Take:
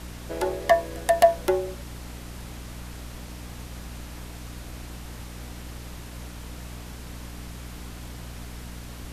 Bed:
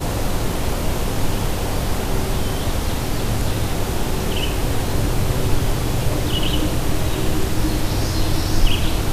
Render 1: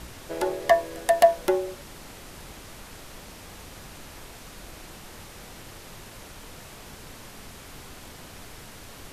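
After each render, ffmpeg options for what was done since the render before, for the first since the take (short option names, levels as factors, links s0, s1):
-af "bandreject=f=60:t=h:w=4,bandreject=f=120:t=h:w=4,bandreject=f=180:t=h:w=4,bandreject=f=240:t=h:w=4,bandreject=f=300:t=h:w=4"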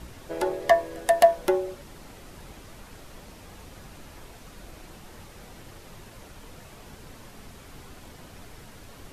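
-af "afftdn=nr=6:nf=-45"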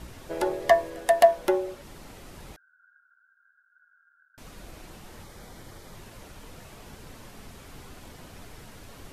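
-filter_complex "[0:a]asettb=1/sr,asplit=3[s0][s1][s2];[s0]atrim=end=0.904[s3];[s1]atrim=start=0.9:end=1.84,asetpts=PTS-STARTPTS,afade=t=in:d=0.004:c=qsin,afade=t=out:st=0.936:d=0.004:c=qsin,bass=f=250:g=-4,treble=f=4000:g=-2[s4];[s2]atrim=start=1.836[s5];[s3][s4]acrossfade=d=0.004:c1=hsin:c2=qsin[s6];[s6][s5]acrossfade=d=0.004:c1=qsin:c2=hsin,asettb=1/sr,asplit=3[s7][s8][s9];[s7]atrim=end=2.564[s10];[s8]atrim=start=2.56:end=4.38,asetpts=PTS-STARTPTS,afade=t=in:d=0.004:c=qsin,afade=t=out:st=1.816:d=0.004:c=qsin,asuperpass=centerf=1500:order=12:qfactor=6[s11];[s9]atrim=start=4.376[s12];[s10][s11]acrossfade=d=0.004:c1=hsin:c2=qsin[s13];[s13][s12]acrossfade=d=0.004:c1=qsin:c2=hsin,asettb=1/sr,asplit=3[s14][s15][s16];[s14]atrim=end=5.224[s17];[s15]atrim=start=5.22:end=5.95,asetpts=PTS-STARTPTS,afade=t=in:d=0.004:c=qsin,afade=t=out:st=0.726:d=0.004:c=qsin,bandreject=f=2700:w=5.7[s18];[s16]atrim=start=5.946[s19];[s17][s18]acrossfade=d=0.004:c1=hsin:c2=qsin[s20];[s20][s19]acrossfade=d=0.004:c1=qsin:c2=hsin"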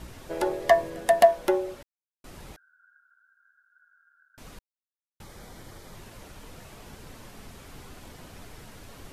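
-filter_complex "[0:a]asettb=1/sr,asplit=3[s0][s1][s2];[s0]atrim=end=0.774[s3];[s1]atrim=start=0.77:end=1.24,asetpts=PTS-STARTPTS,afade=t=in:d=0.004:c=qsin,afade=t=out:st=0.466:d=0.004:c=qsin,equalizer=f=170:w=1.3:g=8.5[s4];[s2]atrim=start=1.236[s5];[s3][s4]acrossfade=d=0.004:c1=hsin:c2=qsin[s6];[s6][s5]acrossfade=d=0.004:c1=qsin:c2=hsin,asplit=5[s7][s8][s9][s10][s11];[s7]atrim=end=1.83,asetpts=PTS-STARTPTS,afade=t=out:st=1.826:d=0.004:c=hsin[s12];[s8]atrim=start=1.83:end=2.24,asetpts=PTS-STARTPTS,volume=0[s13];[s9]atrim=start=2.24:end=4.59,asetpts=PTS-STARTPTS,afade=t=in:d=0.004:c=hsin,afade=t=out:st=2.346:d=0.004:c=hsin[s14];[s10]atrim=start=4.59:end=5.2,asetpts=PTS-STARTPTS,volume=0[s15];[s11]atrim=start=5.2,asetpts=PTS-STARTPTS,afade=t=in:d=0.004:c=hsin[s16];[s12][s13][s14][s15][s16]concat=n=5:v=0:a=1"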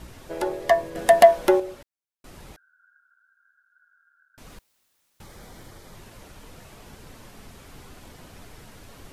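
-filter_complex "[0:a]asettb=1/sr,asplit=3[s0][s1][s2];[s0]atrim=end=0.954[s3];[s1]atrim=start=0.95:end=1.6,asetpts=PTS-STARTPTS,afade=t=in:d=0.004:c=qsin,afade=t=out:st=0.646:d=0.004:c=qsin,acontrast=50[s4];[s2]atrim=start=1.596[s5];[s3][s4]acrossfade=d=0.004:c1=hsin:c2=qsin[s6];[s6][s5]acrossfade=d=0.004:c1=qsin:c2=hsin,asettb=1/sr,asplit=3[s7][s8][s9];[s7]atrim=end=4.504[s10];[s8]atrim=start=4.5:end=5.68,asetpts=PTS-STARTPTS,afade=t=in:d=0.004:c=qsin,afade=t=out:st=1.176:d=0.004:c=qsin,aeval=exprs='val(0)+0.5*0.00119*sgn(val(0))':c=same[s11];[s9]atrim=start=5.676[s12];[s10][s11]acrossfade=d=0.004:c1=hsin:c2=qsin[s13];[s13][s12]acrossfade=d=0.004:c1=qsin:c2=hsin"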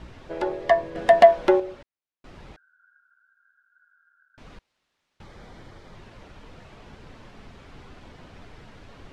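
-af "lowpass=3800"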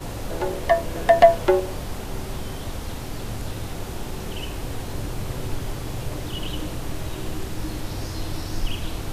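-filter_complex "[1:a]volume=0.316[s0];[0:a][s0]amix=inputs=2:normalize=0"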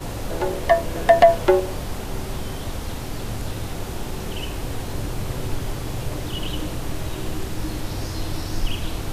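-af "volume=1.26,alimiter=limit=0.708:level=0:latency=1"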